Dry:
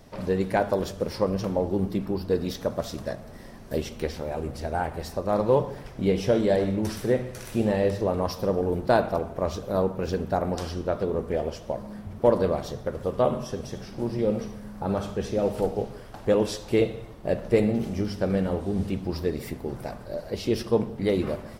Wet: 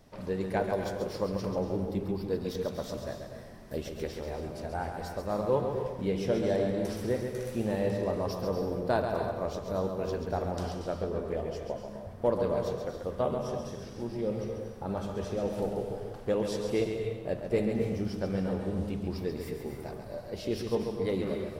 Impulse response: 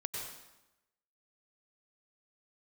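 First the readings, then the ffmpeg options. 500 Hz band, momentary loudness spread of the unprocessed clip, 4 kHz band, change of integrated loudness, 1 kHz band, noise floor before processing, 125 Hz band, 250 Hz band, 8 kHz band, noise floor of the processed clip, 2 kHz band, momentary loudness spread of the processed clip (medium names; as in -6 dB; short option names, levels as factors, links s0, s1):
-5.5 dB, 11 LU, -6.0 dB, -5.5 dB, -6.0 dB, -43 dBFS, -5.0 dB, -6.0 dB, -6.0 dB, -44 dBFS, -6.0 dB, 9 LU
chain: -filter_complex "[0:a]asplit=2[s0][s1];[1:a]atrim=start_sample=2205,adelay=136[s2];[s1][s2]afir=irnorm=-1:irlink=0,volume=0.596[s3];[s0][s3]amix=inputs=2:normalize=0,volume=0.422"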